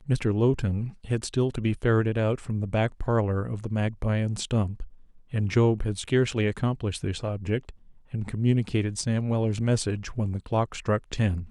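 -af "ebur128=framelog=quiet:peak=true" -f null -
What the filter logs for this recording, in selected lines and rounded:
Integrated loudness:
  I:         -26.9 LUFS
  Threshold: -37.1 LUFS
Loudness range:
  LRA:         1.7 LU
  Threshold: -47.2 LUFS
  LRA low:   -28.0 LUFS
  LRA high:  -26.4 LUFS
True peak:
  Peak:      -10.6 dBFS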